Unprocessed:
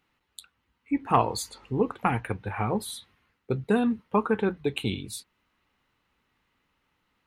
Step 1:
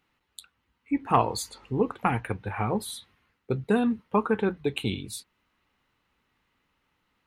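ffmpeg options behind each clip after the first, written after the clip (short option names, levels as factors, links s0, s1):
-af anull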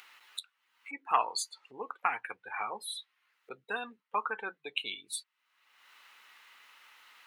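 -af "afftdn=nr=18:nf=-36,acompressor=mode=upward:threshold=0.0398:ratio=2.5,highpass=1200,volume=1.12"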